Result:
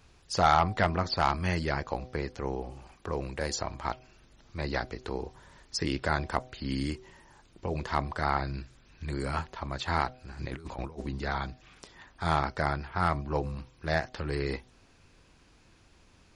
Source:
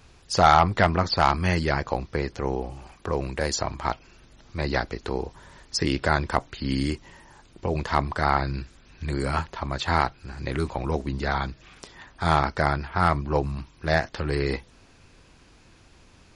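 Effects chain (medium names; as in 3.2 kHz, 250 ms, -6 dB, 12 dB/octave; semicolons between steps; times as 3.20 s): de-hum 126.6 Hz, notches 6; 10.39–11.07 s: compressor with a negative ratio -31 dBFS, ratio -0.5; trim -6 dB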